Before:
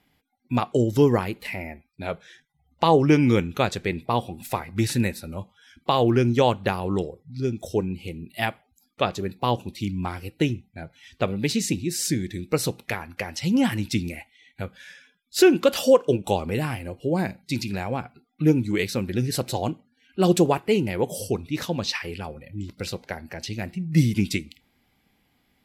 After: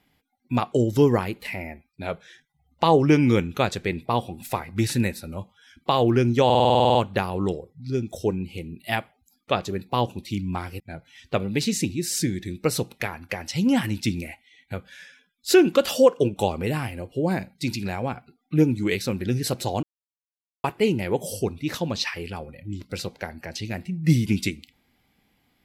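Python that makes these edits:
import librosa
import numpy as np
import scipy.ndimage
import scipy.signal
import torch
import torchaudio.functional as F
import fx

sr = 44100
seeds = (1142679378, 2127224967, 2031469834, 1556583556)

y = fx.edit(x, sr, fx.stutter(start_s=6.45, slice_s=0.05, count=11),
    fx.cut(start_s=10.3, length_s=0.38),
    fx.silence(start_s=19.71, length_s=0.81), tone=tone)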